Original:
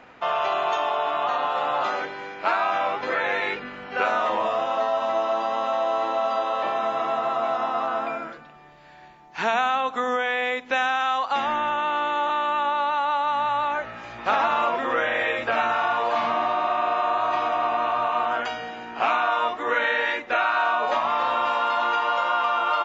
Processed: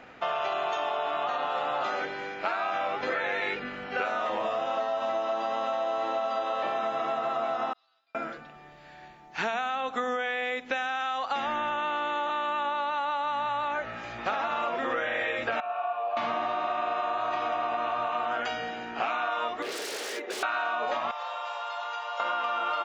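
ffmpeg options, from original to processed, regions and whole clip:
ffmpeg -i in.wav -filter_complex "[0:a]asettb=1/sr,asplit=3[link_01][link_02][link_03];[link_01]atrim=end=7.734[link_04];[link_02]atrim=start=7.73:end=8.15,asetpts=PTS-STARTPTS,afade=type=in:duration=0.004:curve=qsin,afade=type=out:start_time=0.416:duration=0.004:curve=qsin,bandpass=frequency=4400:width_type=q:width=17,agate=range=-33dB:threshold=-56dB:ratio=3:release=100:detection=peak[link_05];[link_03]atrim=start=8.146[link_06];[link_04][link_05]acrossfade=duration=0.004:curve1=hsin:curve2=qsin[link_07];[link_07][link_06]acrossfade=duration=0.004:curve1=qsin:curve2=hsin,asettb=1/sr,asplit=3[link_08][link_09][link_10];[link_08]atrim=end=15.604[link_11];[link_09]atrim=start=15.6:end=16.17,asetpts=PTS-STARTPTS,afade=type=in:duration=0.004:curve=qsin,afade=type=out:start_time=0.566:duration=0.004:curve=qsin,asplit=3[link_12][link_13][link_14];[link_12]bandpass=frequency=730:width_type=q:width=8,volume=0dB[link_15];[link_13]bandpass=frequency=1090:width_type=q:width=8,volume=-6dB[link_16];[link_14]bandpass=frequency=2440:width_type=q:width=8,volume=-9dB[link_17];[link_15][link_16][link_17]amix=inputs=3:normalize=0,equalizer=frequency=1800:width_type=o:width=0.21:gain=8[link_18];[link_10]atrim=start=16.166[link_19];[link_11][link_18]acrossfade=duration=0.004:curve1=hsin:curve2=qsin[link_20];[link_20][link_19]acrossfade=duration=0.004:curve1=qsin:curve2=hsin,asettb=1/sr,asplit=3[link_21][link_22][link_23];[link_21]atrim=end=19.624[link_24];[link_22]atrim=start=19.62:end=20.43,asetpts=PTS-STARTPTS,afade=type=in:duration=0.004:curve=qsin,afade=type=out:start_time=0.806:duration=0.004:curve=qsin,aeval=exprs='0.0447*(abs(mod(val(0)/0.0447+3,4)-2)-1)':channel_layout=same,acompressor=threshold=-34dB:ratio=6:attack=3.2:release=140:knee=1:detection=peak,highpass=frequency=400:width_type=q:width=4.5[link_25];[link_23]atrim=start=20.426[link_26];[link_24][link_25]acrossfade=duration=0.004:curve1=hsin:curve2=qsin[link_27];[link_27][link_26]acrossfade=duration=0.004:curve1=qsin:curve2=hsin,asettb=1/sr,asplit=3[link_28][link_29][link_30];[link_28]atrim=end=21.114[link_31];[link_29]atrim=start=21.11:end=22.2,asetpts=PTS-STARTPTS,afade=type=in:duration=0.004:curve=qsin,afade=type=out:start_time=1.086:duration=0.004:curve=qsin,highpass=frequency=670:width=0.5412,highpass=frequency=670:width=1.3066,equalizer=frequency=1700:width=0.43:gain=-12[link_32];[link_30]atrim=start=22.196[link_33];[link_31][link_32]acrossfade=duration=0.004:curve1=hsin:curve2=qsin[link_34];[link_34][link_33]acrossfade=duration=0.004:curve1=qsin:curve2=hsin,equalizer=frequency=1000:width=5.5:gain=-6.5,acompressor=threshold=-26dB:ratio=6" out.wav

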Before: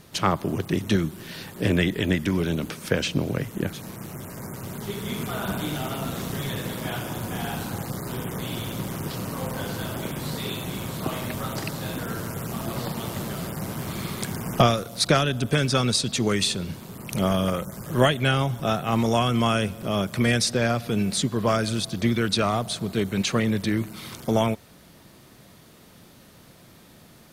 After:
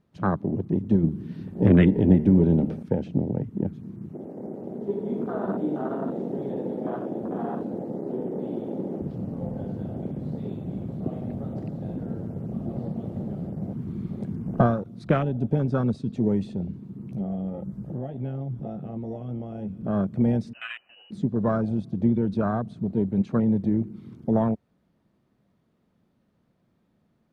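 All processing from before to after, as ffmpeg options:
ffmpeg -i in.wav -filter_complex "[0:a]asettb=1/sr,asplit=3[link_01][link_02][link_03];[link_01]atrim=end=1.034[link_04];[link_02]atrim=start=1.03:end=2.83,asetpts=PTS-STARTPTS,afade=type=in:duration=0.004:curve=qsin,afade=type=out:start_time=1.796:duration=0.004:curve=qsin,bandreject=frequency=74.37:width_type=h:width=4,bandreject=frequency=148.74:width_type=h:width=4,bandreject=frequency=223.11:width_type=h:width=4,bandreject=frequency=297.48:width_type=h:width=4,bandreject=frequency=371.85:width_type=h:width=4,bandreject=frequency=446.22:width_type=h:width=4,bandreject=frequency=520.59:width_type=h:width=4,bandreject=frequency=594.96:width_type=h:width=4,bandreject=frequency=669.33:width_type=h:width=4,bandreject=frequency=743.7:width_type=h:width=4,bandreject=frequency=818.07:width_type=h:width=4,bandreject=frequency=892.44:width_type=h:width=4,bandreject=frequency=966.81:width_type=h:width=4,bandreject=frequency=1041.18:width_type=h:width=4,bandreject=frequency=1115.55:width_type=h:width=4,bandreject=frequency=1189.92:width_type=h:width=4,bandreject=frequency=1264.29:width_type=h:width=4,bandreject=frequency=1338.66:width_type=h:width=4,bandreject=frequency=1413.03:width_type=h:width=4,bandreject=frequency=1487.4:width_type=h:width=4,bandreject=frequency=1561.77:width_type=h:width=4,bandreject=frequency=1636.14:width_type=h:width=4,bandreject=frequency=1710.51:width_type=h:width=4,bandreject=frequency=1784.88:width_type=h:width=4,bandreject=frequency=1859.25:width_type=h:width=4,bandreject=frequency=1933.62:width_type=h:width=4,bandreject=frequency=2007.99:width_type=h:width=4,bandreject=frequency=2082.36:width_type=h:width=4,bandreject=frequency=2156.73:width_type=h:width=4,bandreject=frequency=2231.1:width_type=h:width=4,bandreject=frequency=2305.47:width_type=h:width=4,bandreject=frequency=2379.84:width_type=h:width=4,bandreject=frequency=2454.21:width_type=h:width=4,bandreject=frequency=2528.58:width_type=h:width=4,bandreject=frequency=2602.95:width_type=h:width=4,bandreject=frequency=2677.32:width_type=h:width=4,bandreject=frequency=2751.69:width_type=h:width=4,bandreject=frequency=2826.06:width_type=h:width=4,bandreject=frequency=2900.43:width_type=h:width=4,acontrast=59,bandreject=frequency=6800:width=27[link_05];[link_03]atrim=start=2.826[link_06];[link_04][link_05]acrossfade=duration=0.004:curve1=hsin:curve2=qsin[link_07];[link_07][link_06]acrossfade=duration=0.004:curve1=qsin:curve2=hsin,asettb=1/sr,asplit=3[link_08][link_09][link_10];[link_08]atrim=end=4.134[link_11];[link_09]atrim=start=4.13:end=9.02,asetpts=PTS-STARTPTS,afade=type=in:duration=0.004:curve=qsin,afade=type=out:start_time=4.886:duration=0.004:curve=qsin,highpass=260,equalizer=frequency=390:width=0.71:gain=9[link_12];[link_10]atrim=start=9.016[link_13];[link_11][link_12]acrossfade=duration=0.004:curve1=hsin:curve2=qsin[link_14];[link_14][link_13]acrossfade=duration=0.004:curve1=qsin:curve2=hsin,asettb=1/sr,asplit=3[link_15][link_16][link_17];[link_15]atrim=end=16.674[link_18];[link_16]atrim=start=16.67:end=19.81,asetpts=PTS-STARTPTS,afade=type=in:duration=0.004:curve=qsin,afade=type=out:start_time=3.136:duration=0.004:curve=qsin,acompressor=threshold=-29dB:ratio=4:attack=3.2:release=140:knee=1:detection=peak,asplit=2[link_19][link_20];[link_20]adelay=15,volume=-7dB[link_21];[link_19][link_21]amix=inputs=2:normalize=0,atrim=end_sample=138474[link_22];[link_17]atrim=start=19.806[link_23];[link_18][link_22]acrossfade=duration=0.004:curve1=hsin:curve2=qsin[link_24];[link_24][link_23]acrossfade=duration=0.004:curve1=qsin:curve2=hsin,asettb=1/sr,asplit=3[link_25][link_26][link_27];[link_25]atrim=end=20.534[link_28];[link_26]atrim=start=20.53:end=21.11,asetpts=PTS-STARTPTS,afade=type=in:duration=0.004:curve=qsin,afade=type=out:start_time=0.576:duration=0.004:curve=qsin,highpass=frequency=200:poles=1,lowpass=frequency=2600:width_type=q:width=0.5098,lowpass=frequency=2600:width_type=q:width=0.6013,lowpass=frequency=2600:width_type=q:width=0.9,lowpass=frequency=2600:width_type=q:width=2.563,afreqshift=-3100[link_29];[link_27]atrim=start=21.106[link_30];[link_28][link_29]acrossfade=duration=0.004:curve1=hsin:curve2=qsin[link_31];[link_31][link_30]acrossfade=duration=0.004:curve1=qsin:curve2=hsin,lowpass=frequency=1000:poles=1,equalizer=frequency=210:width=2.2:gain=5,afwtdn=0.0398,volume=-1.5dB" out.wav

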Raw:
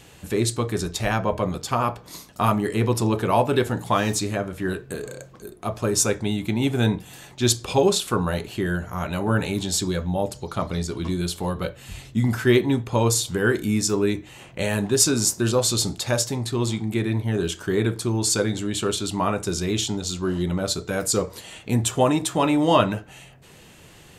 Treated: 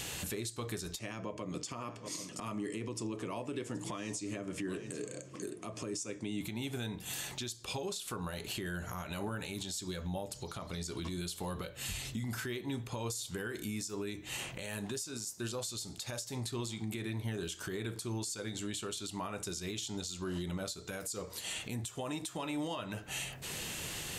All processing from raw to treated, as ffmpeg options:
ffmpeg -i in.wav -filter_complex "[0:a]asettb=1/sr,asplit=3[link_01][link_02][link_03];[link_01]atrim=end=0.994[link_04];[link_02]atrim=start=0.99:end=6.41,asetpts=PTS-STARTPTS,afade=type=in:duration=0.004:curve=qsin,afade=type=out:start_time=5.416:duration=0.004:curve=qsin,highpass=frequency=110:width=0.5412,highpass=frequency=110:width=1.3066,equalizer=frequency=300:width_type=q:width=4:gain=8,equalizer=frequency=800:width_type=q:width=4:gain=-9,equalizer=frequency=1500:width_type=q:width=4:gain=-8,equalizer=frequency=3900:width_type=q:width=4:gain=-10,lowpass=frequency=8700:width=0.5412,lowpass=frequency=8700:width=1.3066,aecho=1:1:776:0.0708,atrim=end_sample=239022[link_05];[link_03]atrim=start=6.406[link_06];[link_04][link_05]acrossfade=duration=0.004:curve1=hsin:curve2=qsin[link_07];[link_07][link_06]acrossfade=duration=0.004:curve1=qsin:curve2=hsin,highshelf=frequency=2100:gain=10,acompressor=threshold=-31dB:ratio=6,alimiter=level_in=8dB:limit=-24dB:level=0:latency=1:release=286,volume=-8dB,volume=3dB" out.wav

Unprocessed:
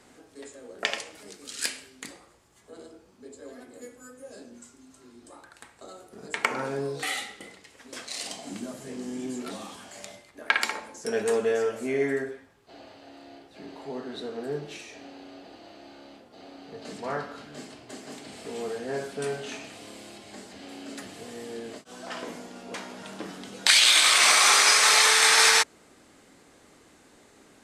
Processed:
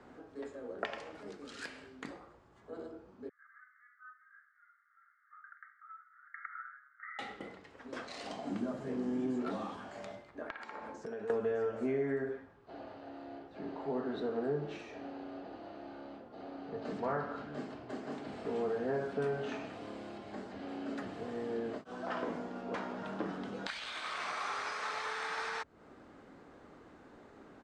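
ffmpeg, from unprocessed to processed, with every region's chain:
ffmpeg -i in.wav -filter_complex "[0:a]asettb=1/sr,asplit=3[link_01][link_02][link_03];[link_01]atrim=end=3.294[link_04];[link_02]atrim=start=3.29:end=7.19,asetpts=PTS-STARTPTS,afade=type=in:duration=0.004:curve=qsin,afade=type=out:start_time=3.896:duration=0.004:curve=qsin,acompressor=threshold=-38dB:ratio=3:attack=3.2:release=140:knee=1:detection=peak,asuperpass=centerf=1600:order=20:qfactor=1.7[link_05];[link_03]atrim=start=7.186[link_06];[link_04][link_05]acrossfade=duration=0.004:curve1=hsin:curve2=qsin[link_07];[link_07][link_06]acrossfade=duration=0.004:curve1=qsin:curve2=hsin,asettb=1/sr,asplit=3[link_08][link_09][link_10];[link_08]atrim=end=10.424[link_11];[link_09]atrim=start=10.42:end=11.3,asetpts=PTS-STARTPTS,afade=type=in:duration=0.004:curve=qsin,afade=type=out:start_time=0.876:duration=0.004:curve=qsin,acompressor=threshold=-40dB:ratio=6:attack=3.2:release=140:knee=1:detection=peak,equalizer=frequency=12000:width_type=o:width=0.27:gain=-8.5[link_12];[link_10]atrim=start=11.296[link_13];[link_11][link_12]acrossfade=duration=0.004:curve1=hsin:curve2=qsin[link_14];[link_14][link_13]acrossfade=duration=0.004:curve1=qsin:curve2=hsin,acrossover=split=130[link_15][link_16];[link_16]acompressor=threshold=-31dB:ratio=10[link_17];[link_15][link_17]amix=inputs=2:normalize=0,firequalizer=gain_entry='entry(1400,0);entry(2100,-8);entry(11000,-30)':delay=0.05:min_phase=1,volume=1dB" out.wav

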